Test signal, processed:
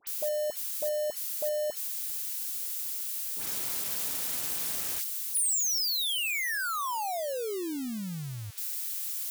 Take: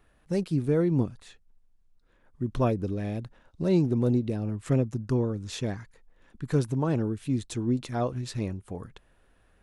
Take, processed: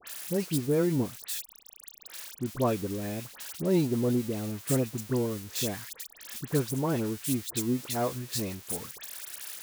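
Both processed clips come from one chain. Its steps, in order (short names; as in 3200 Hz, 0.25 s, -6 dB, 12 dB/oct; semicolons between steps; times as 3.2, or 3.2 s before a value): switching spikes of -26.5 dBFS; HPF 190 Hz 6 dB/oct; dispersion highs, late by 73 ms, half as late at 1900 Hz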